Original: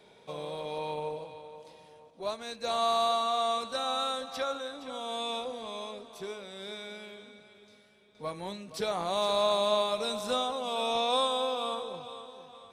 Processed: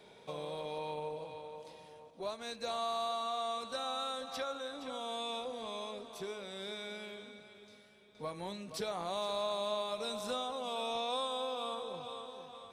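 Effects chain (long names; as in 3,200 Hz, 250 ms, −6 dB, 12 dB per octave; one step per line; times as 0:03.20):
downward compressor 2 to 1, threshold −40 dBFS, peak gain reduction 9.5 dB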